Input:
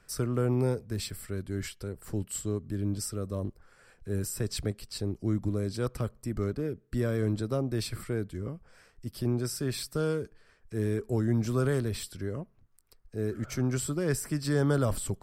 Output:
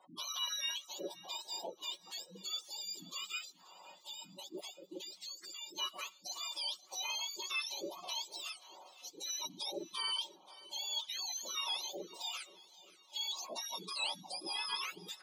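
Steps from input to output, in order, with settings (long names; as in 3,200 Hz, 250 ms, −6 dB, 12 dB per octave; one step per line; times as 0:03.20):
frequency axis turned over on the octave scale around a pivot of 1,200 Hz
gate on every frequency bin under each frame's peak −25 dB strong
high-pass filter 540 Hz 24 dB per octave
high-shelf EQ 6,100 Hz +9 dB
comb filter 5.4 ms, depth 54%
brickwall limiter −27.5 dBFS, peak gain reduction 14 dB
0:03.38–0:05.78: downward compressor, threshold −39 dBFS, peak gain reduction 6.5 dB
high-frequency loss of the air 140 metres
feedback echo with a long and a short gap by turns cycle 885 ms, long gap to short 1.5 to 1, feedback 37%, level −19.5 dB
level +5 dB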